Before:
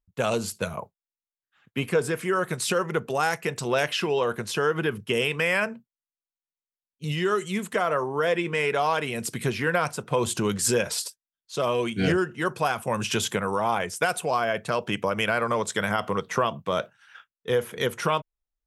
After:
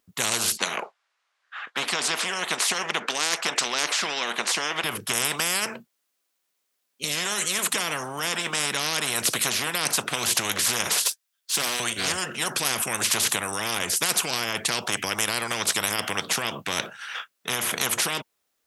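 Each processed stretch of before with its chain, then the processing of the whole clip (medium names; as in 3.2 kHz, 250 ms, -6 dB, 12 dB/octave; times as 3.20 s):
0.57–4.84 s: band-pass 670–5700 Hz + peaking EQ 1.2 kHz +12 dB 2.5 oct
11.05–11.80 s: high-pass 1.4 kHz 6 dB/octave + waveshaping leveller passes 1
whole clip: high-pass 250 Hz 12 dB/octave; band-stop 900 Hz, Q 14; spectrum-flattening compressor 10:1; trim -2 dB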